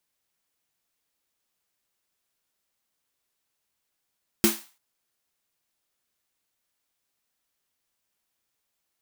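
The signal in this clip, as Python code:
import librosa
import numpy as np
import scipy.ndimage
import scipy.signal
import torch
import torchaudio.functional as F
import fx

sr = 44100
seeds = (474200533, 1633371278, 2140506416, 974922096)

y = fx.drum_snare(sr, seeds[0], length_s=0.34, hz=220.0, second_hz=340.0, noise_db=-3.0, noise_from_hz=660.0, decay_s=0.21, noise_decay_s=0.37)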